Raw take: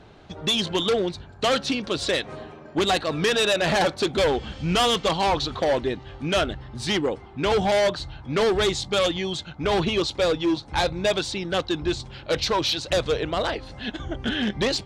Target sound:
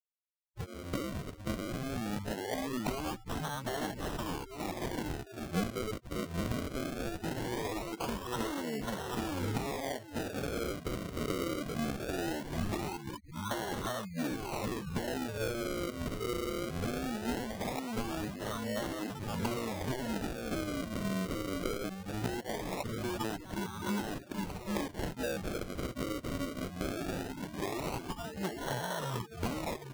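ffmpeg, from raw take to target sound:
ffmpeg -i in.wav -filter_complex "[0:a]highpass=frequency=130:width=0.5412,highpass=frequency=130:width=1.3066,aecho=1:1:390|780|1170|1560:0.447|0.152|0.0516|0.0176,atempo=0.86,tiltshelf=frequency=770:gain=-9.5,acompressor=threshold=-26dB:ratio=12,afftfilt=real='re*gte(hypot(re,im),0.0224)':imag='im*gte(hypot(re,im),0.0224)':win_size=1024:overlap=0.75,equalizer=frequency=3600:width_type=o:width=2:gain=-4,acrossover=split=370[link_01][link_02];[link_02]acompressor=threshold=-35dB:ratio=2.5[link_03];[link_01][link_03]amix=inputs=2:normalize=0,asetrate=25442,aresample=44100,acrusher=samples=35:mix=1:aa=0.000001:lfo=1:lforange=35:lforate=0.2" out.wav

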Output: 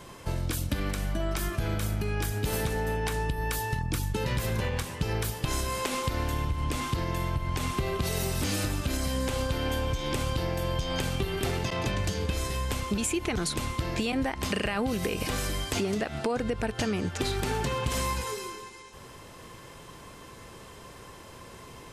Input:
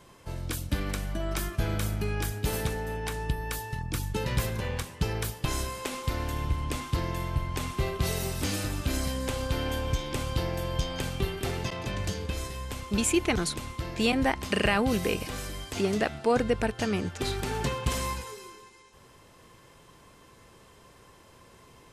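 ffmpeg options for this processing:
ffmpeg -i in.wav -af "alimiter=limit=-21.5dB:level=0:latency=1:release=124,acompressor=threshold=-34dB:ratio=4,volume=8dB" out.wav

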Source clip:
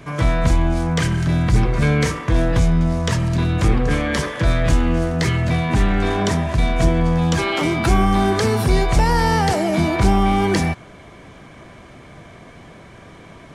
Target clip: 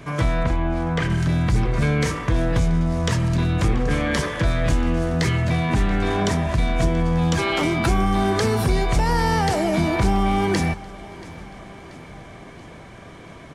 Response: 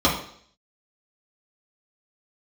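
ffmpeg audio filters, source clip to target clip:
-filter_complex "[0:a]asettb=1/sr,asplit=3[link_01][link_02][link_03];[link_01]atrim=end=0.434[link_04];[link_02]atrim=start=0.43:end=1.1,asetpts=PTS-STARTPTS,afade=type=in:duration=0.004:curve=qsin,afade=type=out:start_time=0.666:duration=0.004:curve=qsin,bass=frequency=250:gain=-4,treble=frequency=4000:gain=-14[link_05];[link_03]atrim=start=1.096[link_06];[link_04][link_05]acrossfade=duration=0.004:curve1=hsin:curve2=qsin[link_07];[link_07][link_06]acrossfade=duration=0.004:curve1=qsin:curve2=hsin,acompressor=threshold=-18dB:ratio=2,asplit=2[link_08][link_09];[link_09]aecho=0:1:682|1364|2046|2728|3410:0.0944|0.0548|0.0318|0.0184|0.0107[link_10];[link_08][link_10]amix=inputs=2:normalize=0"

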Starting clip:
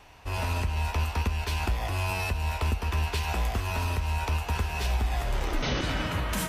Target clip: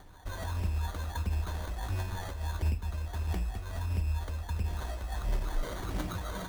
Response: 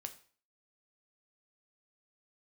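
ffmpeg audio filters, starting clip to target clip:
-filter_complex "[0:a]asettb=1/sr,asplit=3[link_01][link_02][link_03];[link_01]atrim=end=2.624[link_04];[link_02]atrim=start=2.62:end=4.68,asetpts=PTS-STARTPTS,afade=type=in:duration=0.004:curve=qsin,afade=type=out:start_time=2.056:duration=0.004:curve=qsin,equalizer=frequency=1700:width_type=o:width=2.8:gain=-9[link_05];[link_03]atrim=start=4.676[link_06];[link_04][link_05]acrossfade=duration=0.004:curve1=hsin:curve2=qsin[link_07];[link_07][link_06]acrossfade=duration=0.004:curve1=qsin:curve2=hsin,alimiter=level_in=1dB:limit=-24dB:level=0:latency=1:release=251,volume=-1dB,aphaser=in_gain=1:out_gain=1:delay=2:decay=0.68:speed=1.5:type=triangular,acrusher=samples=17:mix=1:aa=0.000001[link_08];[1:a]atrim=start_sample=2205,asetrate=70560,aresample=44100[link_09];[link_08][link_09]afir=irnorm=-1:irlink=0,volume=2dB"

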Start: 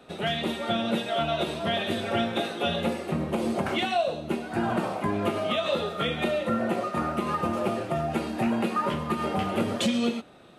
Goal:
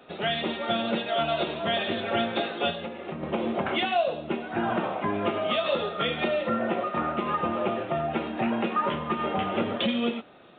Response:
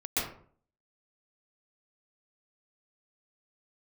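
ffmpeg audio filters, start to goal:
-filter_complex "[0:a]lowshelf=frequency=190:gain=-8.5,asettb=1/sr,asplit=3[link_01][link_02][link_03];[link_01]atrim=end=2.704[link_04];[link_02]atrim=start=2.7:end=3.23,asetpts=PTS-STARTPTS,afade=type=in:duration=0.004:curve=qsin,afade=type=out:start_time=0.526:duration=0.004:curve=qsin,acompressor=threshold=-33dB:ratio=12[link_05];[link_03]atrim=start=3.226[link_06];[link_04][link_05]acrossfade=duration=0.004:curve1=hsin:curve2=qsin[link_07];[link_07][link_06]acrossfade=duration=0.004:curve1=qsin:curve2=hsin,aresample=8000,aresample=44100,volume=1.5dB"

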